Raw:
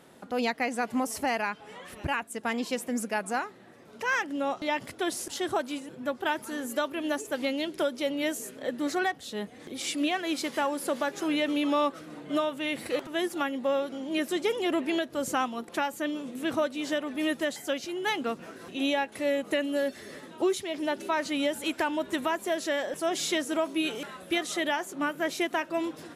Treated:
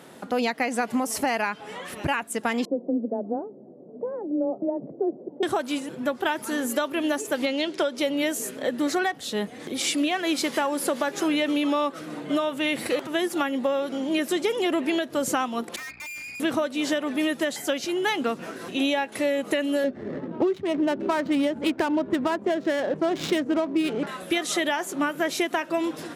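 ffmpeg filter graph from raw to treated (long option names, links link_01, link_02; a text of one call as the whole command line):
ffmpeg -i in.wav -filter_complex "[0:a]asettb=1/sr,asplit=3[link_01][link_02][link_03];[link_01]atrim=end=2.654[link_04];[link_02]atrim=start=2.65:end=5.43,asetpts=PTS-STARTPTS,afade=type=in:duration=0.004:curve=qsin,afade=type=out:start_time=2.776:duration=0.004:curve=qsin,asuperpass=centerf=270:order=8:qfactor=0.55,afreqshift=16[link_05];[link_03]atrim=start=5.426[link_06];[link_04][link_05]acrossfade=duration=0.004:curve1=hsin:curve2=qsin[link_07];[link_07][link_06]acrossfade=duration=0.004:curve1=qsin:curve2=hsin,asettb=1/sr,asplit=3[link_08][link_09][link_10];[link_08]atrim=end=7.464[link_11];[link_09]atrim=start=7.46:end=7.97,asetpts=PTS-STARTPTS,afade=type=in:duration=0.004:curve=qsin,afade=type=out:start_time=0.506:duration=0.004:curve=qsin,lowpass=6000,bass=frequency=250:gain=-7,treble=frequency=4000:gain=3[link_12];[link_10]atrim=start=7.966[link_13];[link_11][link_12]acrossfade=duration=0.004:curve1=hsin:curve2=qsin[link_14];[link_14][link_13]acrossfade=duration=0.004:curve1=qsin:curve2=hsin,asettb=1/sr,asplit=3[link_15][link_16][link_17];[link_15]atrim=end=15.764[link_18];[link_16]atrim=start=15.76:end=16.4,asetpts=PTS-STARTPTS,afade=type=in:duration=0.004:curve=qsin,afade=type=out:start_time=0.636:duration=0.004:curve=qsin,lowpass=frequency=2300:width_type=q:width=0.5098,lowpass=frequency=2300:width_type=q:width=0.6013,lowpass=frequency=2300:width_type=q:width=0.9,lowpass=frequency=2300:width_type=q:width=2.563,afreqshift=-2700,aeval=exprs='val(0)+0.00224*(sin(2*PI*60*n/s)+sin(2*PI*2*60*n/s)/2+sin(2*PI*3*60*n/s)/3+sin(2*PI*4*60*n/s)/4+sin(2*PI*5*60*n/s)/5)':channel_layout=same,aeval=exprs='(tanh(158*val(0)+0.75)-tanh(0.75))/158':channel_layout=same[link_19];[link_17]atrim=start=16.396[link_20];[link_18][link_19]acrossfade=duration=0.004:curve1=hsin:curve2=qsin[link_21];[link_21][link_20]acrossfade=duration=0.004:curve1=qsin:curve2=hsin,asettb=1/sr,asplit=3[link_22][link_23][link_24];[link_22]atrim=end=19.844[link_25];[link_23]atrim=start=19.84:end=24.07,asetpts=PTS-STARTPTS,afade=type=in:duration=0.004:curve=qsin,afade=type=out:start_time=4.226:duration=0.004:curve=qsin,adynamicsmooth=sensitivity=5.5:basefreq=670,lowshelf=frequency=410:gain=10[link_26];[link_24]atrim=start=24.066[link_27];[link_25][link_26]acrossfade=duration=0.004:curve1=hsin:curve2=qsin[link_28];[link_28][link_27]acrossfade=duration=0.004:curve1=qsin:curve2=hsin,highpass=110,acompressor=threshold=-29dB:ratio=6,volume=8dB" out.wav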